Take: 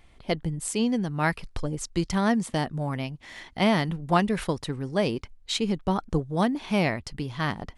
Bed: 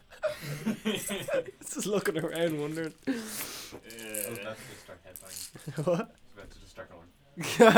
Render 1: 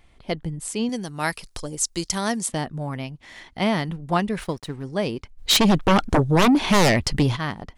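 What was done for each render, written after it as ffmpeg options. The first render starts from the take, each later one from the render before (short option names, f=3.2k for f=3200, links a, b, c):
-filter_complex "[0:a]asettb=1/sr,asplit=3[a][b][c];[a]atrim=end=0.894[d];[b]atrim=start=0.89:end=2.52,asetpts=PTS-STARTPTS,afade=t=in:d=0.004:c=qsin,afade=t=out:st=1.626:d=0.004:c=qsin,bass=f=250:g=-6,treble=f=4k:g=14[e];[c]atrim=start=2.516[f];[d][e]acrossfade=d=0.004:c1=hsin:c2=qsin[g];[g][f]acrossfade=d=0.004:c1=qsin:c2=hsin,asettb=1/sr,asplit=3[h][i][j];[h]atrim=end=4.394[k];[i]atrim=start=4.39:end=4.84,asetpts=PTS-STARTPTS,afade=t=in:d=0.004:c=qsin,afade=t=out:st=0.446:d=0.004:c=qsin,aeval=exprs='sgn(val(0))*max(abs(val(0))-0.00376,0)':c=same[l];[j]atrim=start=4.836[m];[k][l]acrossfade=d=0.004:c1=hsin:c2=qsin[n];[n][m]acrossfade=d=0.004:c1=qsin:c2=hsin,asplit=3[o][p][q];[o]afade=t=out:st=5.37:d=0.02[r];[p]aeval=exprs='0.237*sin(PI/2*3.55*val(0)/0.237)':c=same,afade=t=in:st=5.37:d=0.02,afade=t=out:st=7.35:d=0.02[s];[q]afade=t=in:st=7.35:d=0.02[t];[r][s][t]amix=inputs=3:normalize=0"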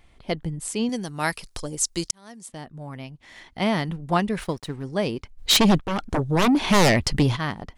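-filter_complex "[0:a]asplit=3[a][b][c];[a]atrim=end=2.11,asetpts=PTS-STARTPTS,afade=t=out:st=2.106:d=0.004:c=hsin[d];[b]atrim=start=2.11:end=5.8,asetpts=PTS-STARTPTS,afade=t=in:d=1.77,afade=t=out:st=3.686:d=0.004:c=hsin:silence=0.237137[e];[c]atrim=start=5.8,asetpts=PTS-STARTPTS,afade=t=in:d=1:silence=0.237137[f];[d][e][f]concat=n=3:v=0:a=1"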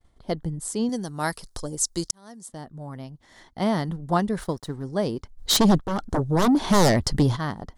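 -af "equalizer=f=2.5k:w=2.2:g=-14.5,agate=range=-33dB:threshold=-49dB:ratio=3:detection=peak"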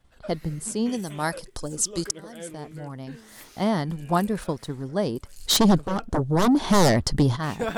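-filter_complex "[1:a]volume=-10.5dB[a];[0:a][a]amix=inputs=2:normalize=0"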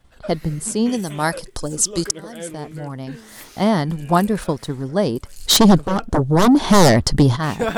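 -af "volume=6.5dB"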